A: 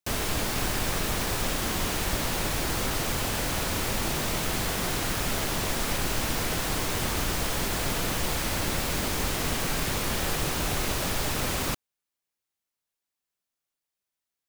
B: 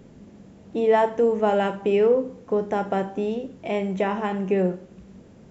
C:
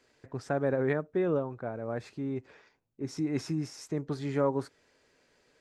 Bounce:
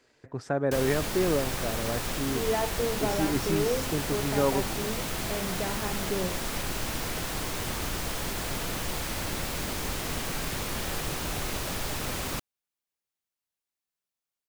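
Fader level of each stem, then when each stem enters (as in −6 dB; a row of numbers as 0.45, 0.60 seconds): −4.0, −10.0, +2.0 decibels; 0.65, 1.60, 0.00 seconds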